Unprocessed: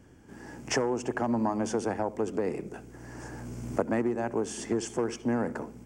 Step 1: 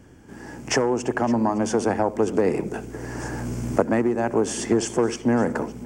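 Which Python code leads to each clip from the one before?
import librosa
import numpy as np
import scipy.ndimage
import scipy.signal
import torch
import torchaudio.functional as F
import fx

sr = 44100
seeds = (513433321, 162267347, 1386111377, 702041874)

y = fx.rider(x, sr, range_db=3, speed_s=0.5)
y = y + 10.0 ** (-19.5 / 20.0) * np.pad(y, (int(562 * sr / 1000.0), 0))[:len(y)]
y = F.gain(torch.from_numpy(y), 8.0).numpy()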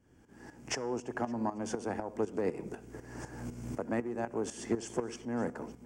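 y = fx.tremolo_shape(x, sr, shape='saw_up', hz=4.0, depth_pct=75)
y = fx.comb_fb(y, sr, f0_hz=240.0, decay_s=1.2, harmonics='all', damping=0.0, mix_pct=40)
y = F.gain(torch.from_numpy(y), -5.5).numpy()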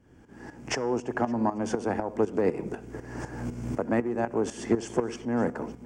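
y = fx.high_shelf(x, sr, hz=5500.0, db=-9.0)
y = F.gain(torch.from_numpy(y), 7.5).numpy()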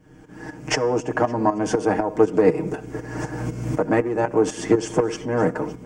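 y = x + 0.74 * np.pad(x, (int(6.5 * sr / 1000.0), 0))[:len(x)]
y = F.gain(torch.from_numpy(y), 6.0).numpy()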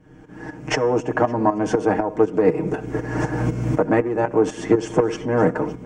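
y = fx.rider(x, sr, range_db=4, speed_s=0.5)
y = fx.high_shelf(y, sr, hz=5800.0, db=-11.0)
y = fx.notch(y, sr, hz=4800.0, q=16.0)
y = F.gain(torch.from_numpy(y), 2.0).numpy()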